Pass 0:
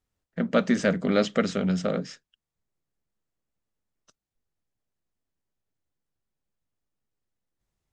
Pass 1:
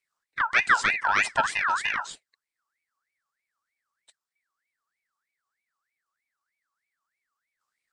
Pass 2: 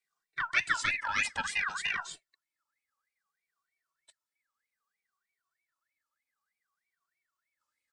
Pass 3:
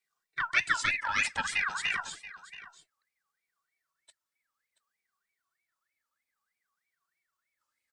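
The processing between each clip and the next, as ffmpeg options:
-af "equalizer=f=250:t=o:w=0.67:g=6,equalizer=f=1k:t=o:w=0.67:g=-6,equalizer=f=6.3k:t=o:w=0.67:g=9,aeval=exprs='val(0)*sin(2*PI*1700*n/s+1700*0.35/3.2*sin(2*PI*3.2*n/s))':c=same"
-filter_complex "[0:a]acrossover=split=240|1900[a][b][c];[b]acompressor=threshold=-33dB:ratio=6[d];[a][d][c]amix=inputs=3:normalize=0,asplit=2[e][f];[f]adelay=2.1,afreqshift=-0.6[g];[e][g]amix=inputs=2:normalize=1"
-af "aecho=1:1:679:0.158,volume=1.5dB"

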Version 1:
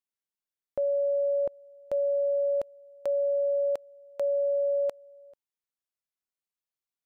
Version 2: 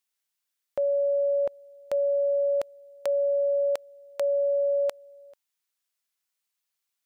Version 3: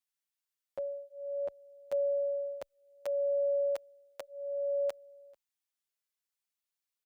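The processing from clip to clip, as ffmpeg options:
-af "tiltshelf=f=780:g=-7,volume=4dB"
-filter_complex "[0:a]asplit=2[a][b];[b]adelay=8.2,afreqshift=-0.63[c];[a][c]amix=inputs=2:normalize=1,volume=-5dB"

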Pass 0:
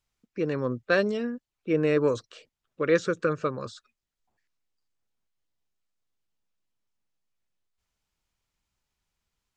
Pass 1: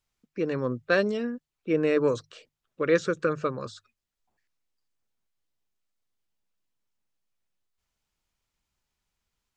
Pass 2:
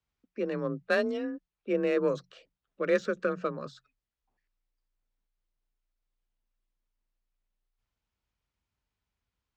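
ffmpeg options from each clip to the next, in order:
-af "bandreject=f=50:t=h:w=6,bandreject=f=100:t=h:w=6,bandreject=f=150:t=h:w=6"
-af "afreqshift=29,adynamicsmooth=sensitivity=4:basefreq=5.2k,volume=-3.5dB"

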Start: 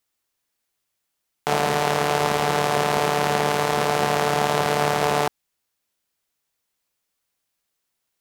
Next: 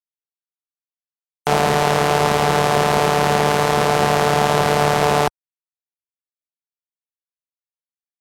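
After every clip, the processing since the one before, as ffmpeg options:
-filter_complex "[0:a]afftfilt=real='re*gte(hypot(re,im),0.00631)':imag='im*gte(hypot(re,im),0.00631)':win_size=1024:overlap=0.75,lowshelf=f=83:g=9,asplit=2[a][b];[b]acontrast=89,volume=-0.5dB[c];[a][c]amix=inputs=2:normalize=0,volume=-4.5dB"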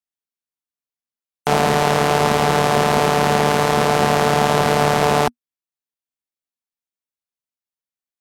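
-af "equalizer=f=240:t=o:w=0.26:g=7.5"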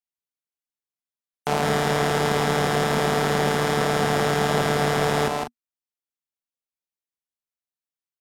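-af "aecho=1:1:157.4|195.3:0.631|0.282,volume=-6.5dB"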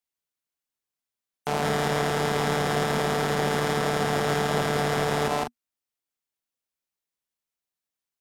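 -af "alimiter=limit=-18dB:level=0:latency=1:release=113,volume=4dB"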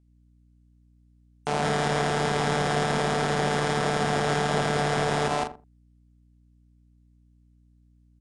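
-filter_complex "[0:a]aeval=exprs='val(0)+0.001*(sin(2*PI*60*n/s)+sin(2*PI*2*60*n/s)/2+sin(2*PI*3*60*n/s)/3+sin(2*PI*4*60*n/s)/4+sin(2*PI*5*60*n/s)/5)':c=same,asplit=2[a][b];[b]adelay=83,lowpass=f=860:p=1,volume=-11.5dB,asplit=2[c][d];[d]adelay=83,lowpass=f=860:p=1,volume=0.18[e];[a][c][e]amix=inputs=3:normalize=0,aresample=22050,aresample=44100"

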